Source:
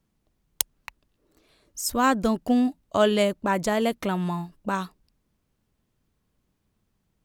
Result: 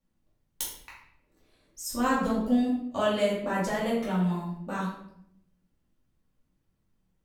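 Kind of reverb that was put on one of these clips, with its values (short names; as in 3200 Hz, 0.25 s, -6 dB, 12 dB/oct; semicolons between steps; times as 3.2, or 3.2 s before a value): shoebox room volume 160 m³, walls mixed, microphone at 2.4 m; gain -13 dB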